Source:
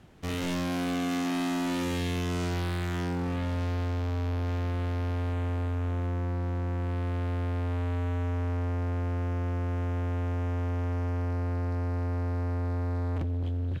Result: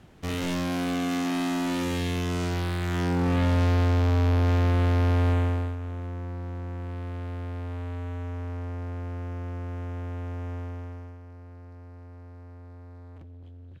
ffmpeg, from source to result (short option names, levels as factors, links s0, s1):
-af "volume=2.51,afade=t=in:st=2.8:d=0.64:silence=0.501187,afade=t=out:st=5.31:d=0.46:silence=0.251189,afade=t=out:st=10.54:d=0.65:silence=0.266073"